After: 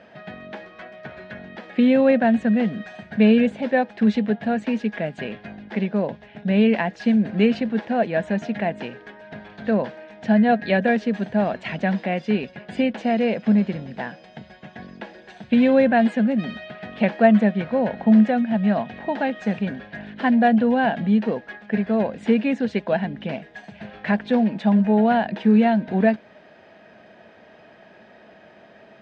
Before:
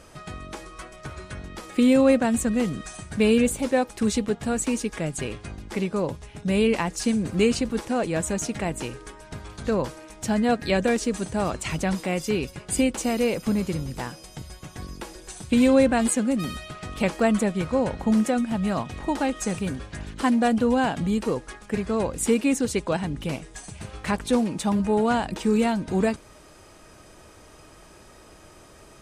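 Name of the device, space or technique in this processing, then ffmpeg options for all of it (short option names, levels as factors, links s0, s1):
kitchen radio: -af "highpass=180,equalizer=f=210:t=q:w=4:g=10,equalizer=f=320:t=q:w=4:g=-5,equalizer=f=670:t=q:w=4:g=9,equalizer=f=1200:t=q:w=4:g=-9,equalizer=f=1700:t=q:w=4:g=9,lowpass=f=3600:w=0.5412,lowpass=f=3600:w=1.3066"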